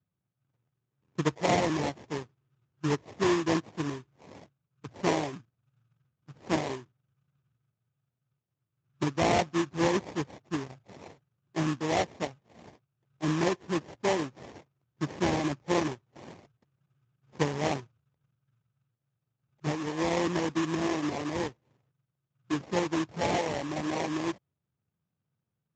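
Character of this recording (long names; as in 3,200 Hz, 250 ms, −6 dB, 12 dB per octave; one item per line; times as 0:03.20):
aliases and images of a low sample rate 1,400 Hz, jitter 20%
Speex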